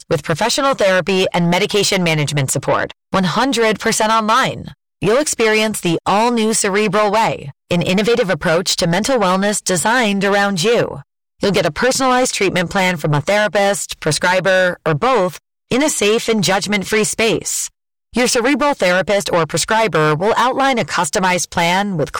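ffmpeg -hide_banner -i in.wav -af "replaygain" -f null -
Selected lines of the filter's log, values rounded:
track_gain = -3.2 dB
track_peak = 0.298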